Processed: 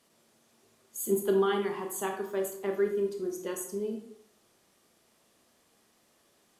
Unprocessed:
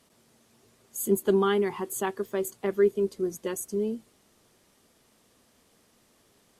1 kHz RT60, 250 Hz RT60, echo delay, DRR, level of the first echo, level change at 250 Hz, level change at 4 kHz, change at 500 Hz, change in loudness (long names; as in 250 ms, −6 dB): 0.60 s, 0.65 s, no echo audible, 2.5 dB, no echo audible, −4.5 dB, −2.5 dB, −3.5 dB, −3.5 dB